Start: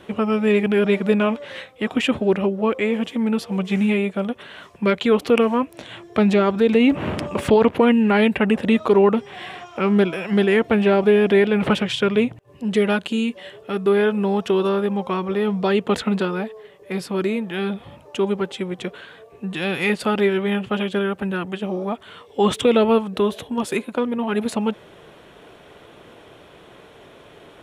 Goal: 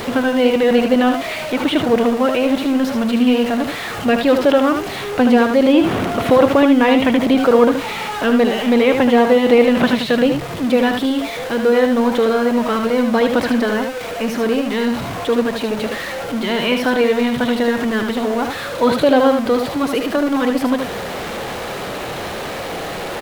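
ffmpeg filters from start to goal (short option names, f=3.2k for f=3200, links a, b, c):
-filter_complex "[0:a]aeval=exprs='val(0)+0.5*0.075*sgn(val(0))':c=same,acrossover=split=2600[a][b];[b]acompressor=threshold=-35dB:ratio=4:attack=1:release=60[c];[a][c]amix=inputs=2:normalize=0,asetrate=52479,aresample=44100,asplit=2[d][e];[e]aecho=0:1:76:0.501[f];[d][f]amix=inputs=2:normalize=0,volume=1.5dB"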